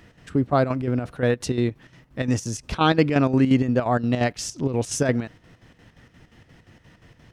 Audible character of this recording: chopped level 5.7 Hz, depth 60%, duty 65%

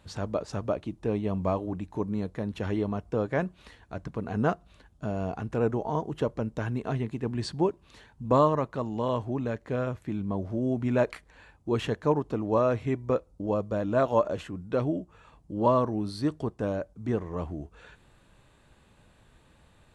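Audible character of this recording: noise floor -61 dBFS; spectral tilt -6.0 dB/oct

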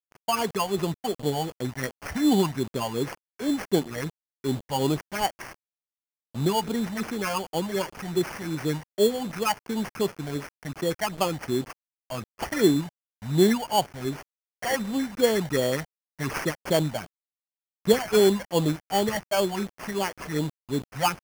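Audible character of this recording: a quantiser's noise floor 6-bit, dither none; phasing stages 8, 2.7 Hz, lowest notch 350–3300 Hz; aliases and images of a low sample rate 3800 Hz, jitter 0%

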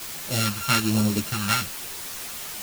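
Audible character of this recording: a buzz of ramps at a fixed pitch in blocks of 32 samples; phasing stages 2, 1.2 Hz, lowest notch 410–1700 Hz; a quantiser's noise floor 6-bit, dither triangular; a shimmering, thickened sound

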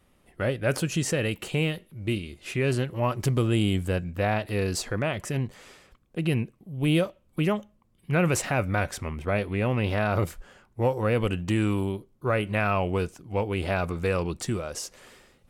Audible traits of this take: noise floor -64 dBFS; spectral tilt -5.5 dB/oct

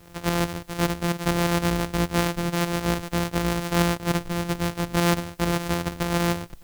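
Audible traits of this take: a buzz of ramps at a fixed pitch in blocks of 256 samples; tremolo saw up 6.8 Hz, depth 40%; a quantiser's noise floor 10-bit, dither triangular

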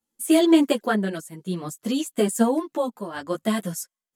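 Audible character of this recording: tremolo triangle 0.57 Hz, depth 75%; a shimmering, thickened sound

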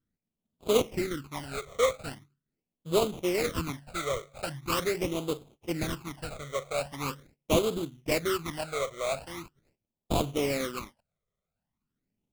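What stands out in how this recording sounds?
aliases and images of a low sample rate 1700 Hz, jitter 20%; phasing stages 12, 0.42 Hz, lowest notch 270–1900 Hz

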